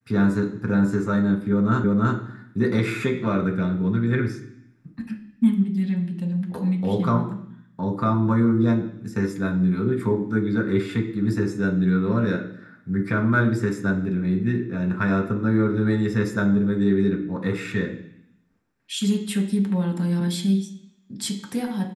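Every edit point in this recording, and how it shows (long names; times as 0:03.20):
0:01.84: the same again, the last 0.33 s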